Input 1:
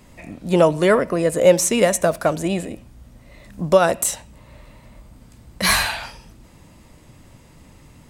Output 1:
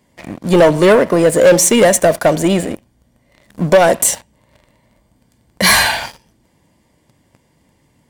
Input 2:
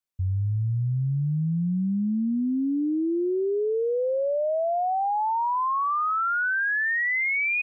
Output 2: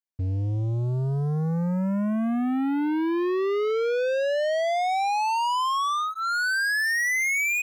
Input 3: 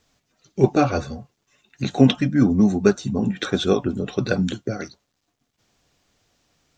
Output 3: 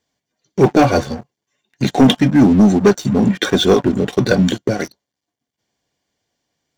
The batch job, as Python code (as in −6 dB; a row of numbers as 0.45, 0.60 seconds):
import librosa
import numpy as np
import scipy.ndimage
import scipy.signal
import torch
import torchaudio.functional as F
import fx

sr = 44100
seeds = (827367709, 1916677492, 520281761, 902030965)

y = fx.notch_comb(x, sr, f0_hz=1300.0)
y = fx.leveller(y, sr, passes=3)
y = F.gain(torch.from_numpy(y), -1.0).numpy()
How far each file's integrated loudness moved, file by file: +6.5, +0.5, +6.5 LU